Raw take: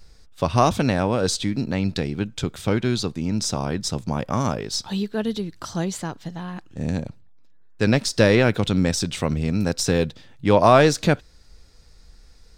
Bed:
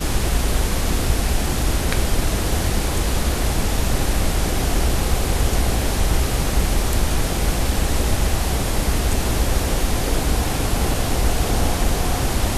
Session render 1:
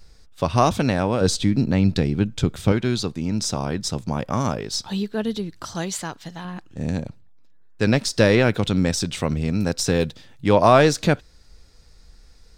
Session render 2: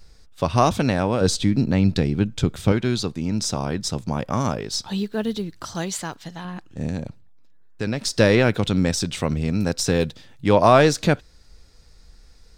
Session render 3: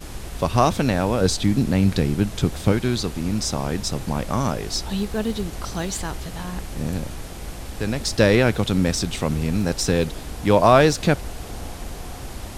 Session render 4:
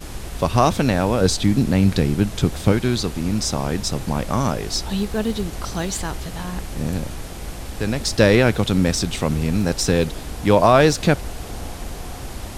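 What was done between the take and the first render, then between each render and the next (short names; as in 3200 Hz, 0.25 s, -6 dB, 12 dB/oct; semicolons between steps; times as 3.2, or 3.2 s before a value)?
1.21–2.72 low shelf 350 Hz +7 dB; 5.75–6.45 tilt shelf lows -4.5 dB, about 730 Hz; 10–10.48 high shelf 5500 Hz +6 dB
4.98–6.22 block floating point 7-bit; 6.87–8.05 compressor 2.5:1, threshold -23 dBFS
add bed -14 dB
gain +2 dB; limiter -3 dBFS, peak gain reduction 2.5 dB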